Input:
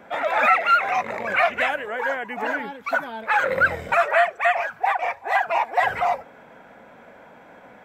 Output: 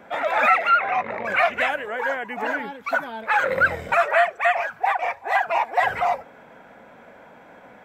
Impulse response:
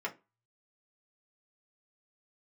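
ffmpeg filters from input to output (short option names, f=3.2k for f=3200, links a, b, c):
-filter_complex "[0:a]asettb=1/sr,asplit=3[a][b][c];[a]atrim=end=0.694[d];[b]atrim=start=0.69:end=1.25,asetpts=PTS-STARTPTS,afade=t=in:d=0.004:c=qsin,afade=t=out:st=0.556:d=0.004:c=qsin,lowpass=3k[e];[c]atrim=start=1.246[f];[d][e]acrossfade=d=0.004:c1=hsin:c2=qsin[g];[g][f]acrossfade=d=0.004:c1=qsin:c2=hsin"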